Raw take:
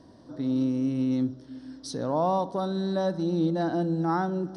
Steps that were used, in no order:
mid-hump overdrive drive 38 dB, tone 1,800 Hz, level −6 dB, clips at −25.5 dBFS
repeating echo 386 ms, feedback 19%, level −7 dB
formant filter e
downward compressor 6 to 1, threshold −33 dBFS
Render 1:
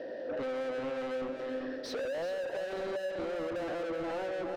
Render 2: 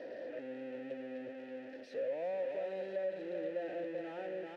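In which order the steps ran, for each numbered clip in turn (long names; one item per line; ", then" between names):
formant filter, then mid-hump overdrive, then repeating echo, then downward compressor
repeating echo, then mid-hump overdrive, then formant filter, then downward compressor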